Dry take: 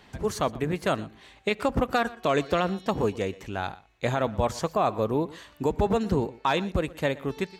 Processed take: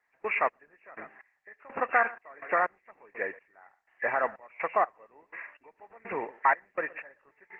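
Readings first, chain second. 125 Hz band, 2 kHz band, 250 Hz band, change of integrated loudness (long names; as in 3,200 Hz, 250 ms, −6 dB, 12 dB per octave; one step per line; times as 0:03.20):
below −25 dB, +3.0 dB, −19.5 dB, −2.5 dB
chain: hearing-aid frequency compression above 1,600 Hz 4 to 1
high-pass filter 780 Hz 12 dB per octave
gate pattern ".x..x..xx" 62 BPM −24 dB
level +3.5 dB
Opus 12 kbit/s 48,000 Hz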